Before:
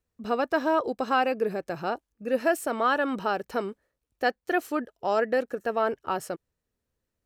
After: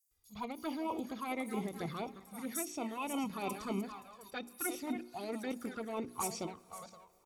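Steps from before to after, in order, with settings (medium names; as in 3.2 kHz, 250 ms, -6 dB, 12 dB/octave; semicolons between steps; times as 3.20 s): backward echo that repeats 261 ms, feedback 41%, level -13.5 dB; pre-emphasis filter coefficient 0.8; reverse; compression 12:1, threshold -43 dBFS, peak gain reduction 13.5 dB; reverse; touch-sensitive flanger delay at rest 2.5 ms, full sweep at -43 dBFS; comb 0.9 ms, depth 54%; formant shift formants -3 st; hum notches 60/120/180/240/300/360/420 Hz; bands offset in time highs, lows 110 ms, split 5.9 kHz; on a send at -21 dB: reverberation RT60 3.9 s, pre-delay 6 ms; on the sum: endings held to a fixed fall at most 160 dB/s; trim +14 dB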